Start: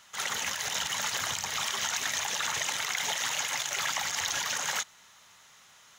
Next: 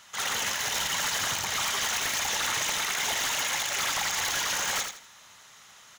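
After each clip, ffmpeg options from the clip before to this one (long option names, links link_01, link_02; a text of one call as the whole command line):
ffmpeg -i in.wav -af "aeval=exprs='0.0473*(abs(mod(val(0)/0.0473+3,4)-2)-1)':channel_layout=same,aecho=1:1:82|164|246|328:0.473|0.132|0.0371|0.0104,volume=3.5dB" out.wav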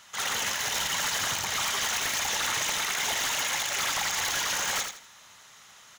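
ffmpeg -i in.wav -af anull out.wav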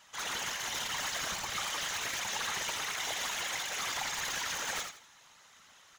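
ffmpeg -i in.wav -af "highshelf=frequency=8000:gain=-5,afftfilt=real='hypot(re,im)*cos(2*PI*random(0))':imag='hypot(re,im)*sin(2*PI*random(1))':win_size=512:overlap=0.75" out.wav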